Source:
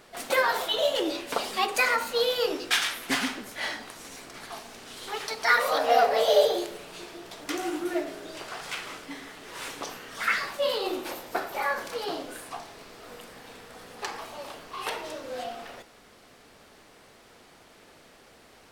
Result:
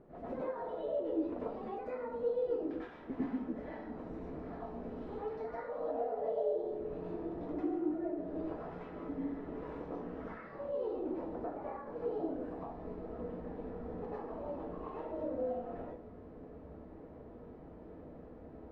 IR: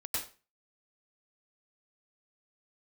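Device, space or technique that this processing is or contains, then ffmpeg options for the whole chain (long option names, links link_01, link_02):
television next door: -filter_complex "[0:a]acompressor=threshold=-39dB:ratio=4,lowpass=450[link_01];[1:a]atrim=start_sample=2205[link_02];[link_01][link_02]afir=irnorm=-1:irlink=0,volume=6dB"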